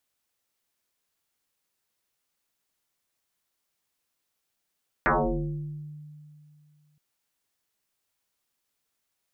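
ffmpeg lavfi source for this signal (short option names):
-f lavfi -i "aevalsrc='0.126*pow(10,-3*t/2.51)*sin(2*PI*150*t+10*pow(10,-3*t/1.08)*sin(2*PI*1.28*150*t))':d=1.92:s=44100"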